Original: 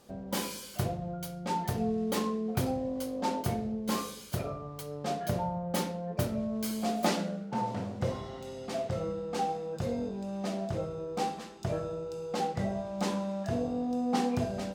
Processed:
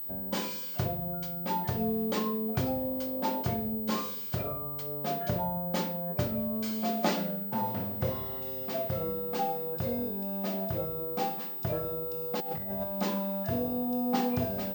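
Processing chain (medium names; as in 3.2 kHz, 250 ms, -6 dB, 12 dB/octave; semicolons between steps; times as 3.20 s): 12.40–12.84 s: compressor with a negative ratio -36 dBFS, ratio -0.5; class-D stage that switches slowly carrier 16 kHz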